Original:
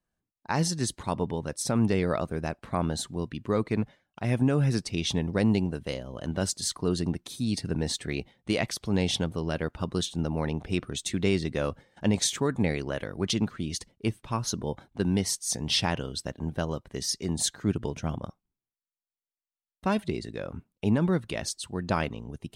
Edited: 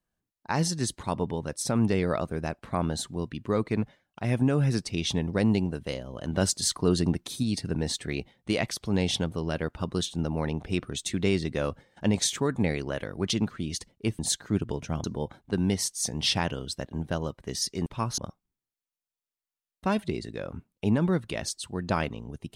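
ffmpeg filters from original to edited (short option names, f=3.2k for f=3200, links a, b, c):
-filter_complex "[0:a]asplit=7[a][b][c][d][e][f][g];[a]atrim=end=6.332[h];[b]atrim=start=6.328:end=7.432,asetpts=PTS-STARTPTS,volume=3.5dB[i];[c]atrim=start=7.428:end=14.192[j];[d]atrim=start=17.328:end=18.182[k];[e]atrim=start=14.508:end=17.332[l];[f]atrim=start=14.188:end=14.512[m];[g]atrim=start=18.178[n];[h][i]acrossfade=d=0.004:c1=hsin:c2=hsin[o];[o][j]acrossfade=d=0.004:c1=hsin:c2=hsin[p];[p][k]acrossfade=d=0.004:c1=hsin:c2=hsin[q];[q][l]acrossfade=d=0.004:c1=hsin:c2=hsin[r];[r][m]acrossfade=d=0.004:c1=hsin:c2=hsin[s];[s][n]acrossfade=d=0.004:c1=hsin:c2=hsin"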